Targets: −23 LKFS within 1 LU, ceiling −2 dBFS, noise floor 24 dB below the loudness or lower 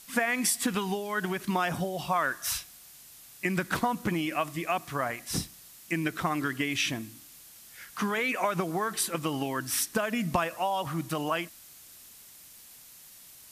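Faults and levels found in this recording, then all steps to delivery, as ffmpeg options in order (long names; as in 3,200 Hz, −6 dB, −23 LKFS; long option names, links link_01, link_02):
background noise floor −52 dBFS; target noise floor −54 dBFS; integrated loudness −30.0 LKFS; sample peak −10.5 dBFS; target loudness −23.0 LKFS
→ -af "afftdn=noise_reduction=6:noise_floor=-52"
-af "volume=7dB"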